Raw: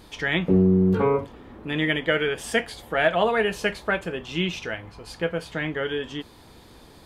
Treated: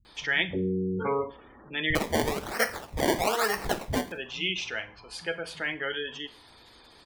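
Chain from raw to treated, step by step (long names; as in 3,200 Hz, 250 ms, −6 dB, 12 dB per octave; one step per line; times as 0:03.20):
gate on every frequency bin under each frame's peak −25 dB strong
tilt shelving filter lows −6.5 dB, about 810 Hz
0:01.90–0:04.07: sample-and-hold swept by an LFO 23×, swing 100% 1.1 Hz
multiband delay without the direct sound lows, highs 50 ms, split 150 Hz
convolution reverb RT60 0.35 s, pre-delay 32 ms, DRR 13.5 dB
level −4.5 dB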